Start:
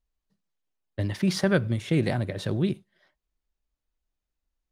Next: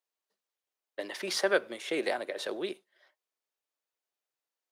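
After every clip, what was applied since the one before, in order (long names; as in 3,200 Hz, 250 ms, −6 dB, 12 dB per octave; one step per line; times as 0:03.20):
high-pass filter 400 Hz 24 dB per octave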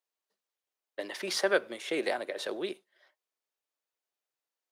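no processing that can be heard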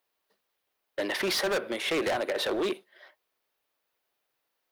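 parametric band 7,300 Hz −9.5 dB 1 octave
in parallel at +1 dB: downward compressor, threshold −37 dBFS, peak gain reduction 15.5 dB
on the sum: gain into a clipping stage and back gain 31 dB
level +6 dB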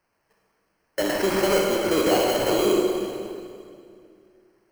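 gain on a spectral selection 0:01.11–0:03.65, 1,500–11,000 Hz −9 dB
sample-rate reduction 3,600 Hz, jitter 0%
convolution reverb RT60 2.3 s, pre-delay 32 ms, DRR −1 dB
level +5.5 dB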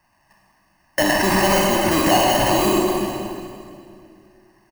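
comb filter 1.1 ms, depth 97%
in parallel at +2.5 dB: brickwall limiter −17 dBFS, peak gain reduction 8 dB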